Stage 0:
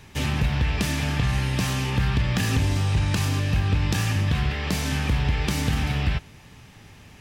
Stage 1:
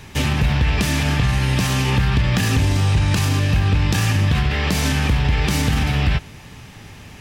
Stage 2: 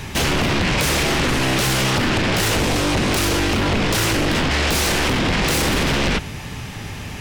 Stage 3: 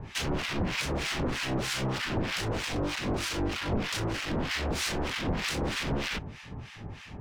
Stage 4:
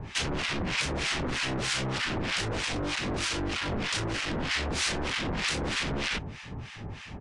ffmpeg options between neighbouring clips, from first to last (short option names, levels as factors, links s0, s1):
-af "alimiter=limit=0.126:level=0:latency=1:release=51,volume=2.51"
-af "aeval=exprs='0.335*sin(PI/2*3.55*val(0)/0.335)':c=same,volume=0.501"
-filter_complex "[0:a]acrossover=split=1100[s0][s1];[s0]aeval=exprs='val(0)*(1-1/2+1/2*cos(2*PI*3.2*n/s))':c=same[s2];[s1]aeval=exprs='val(0)*(1-1/2-1/2*cos(2*PI*3.2*n/s))':c=same[s3];[s2][s3]amix=inputs=2:normalize=0,adynamicsmooth=sensitivity=4.5:basefreq=4500,volume=0.422"
-filter_complex "[0:a]aresample=22050,aresample=44100,acrossover=split=1600[s0][s1];[s0]asoftclip=type=tanh:threshold=0.0266[s2];[s2][s1]amix=inputs=2:normalize=0,volume=1.41"